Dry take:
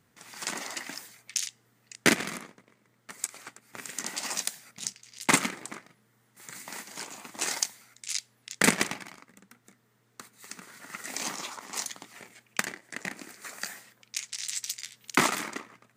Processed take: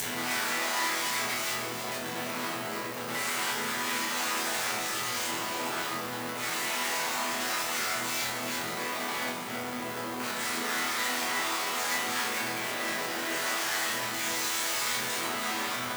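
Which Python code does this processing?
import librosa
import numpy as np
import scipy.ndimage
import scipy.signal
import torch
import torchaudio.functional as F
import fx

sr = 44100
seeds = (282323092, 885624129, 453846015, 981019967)

p1 = fx.delta_mod(x, sr, bps=64000, step_db=-18.0)
p2 = scipy.signal.sosfilt(scipy.signal.butter(4, 86.0, 'highpass', fs=sr, output='sos'), p1)
p3 = fx.env_lowpass_down(p2, sr, base_hz=930.0, full_db=-20.5)
p4 = fx.peak_eq(p3, sr, hz=7700.0, db=5.0, octaves=0.6)
p5 = fx.leveller(p4, sr, passes=5)
p6 = fx.over_compress(p5, sr, threshold_db=-17.0, ratio=-1.0)
p7 = p5 + (p6 * 10.0 ** (-2.0 / 20.0))
p8 = fx.tube_stage(p7, sr, drive_db=13.0, bias=0.8)
p9 = np.where(np.abs(p8) >= 10.0 ** (-27.5 / 20.0), p8, 0.0)
p10 = fx.riaa(p9, sr, side='recording')
p11 = fx.resonator_bank(p10, sr, root=40, chord='sus4', decay_s=0.76)
y = p11 + fx.echo_single(p11, sr, ms=313, db=-8.0, dry=0)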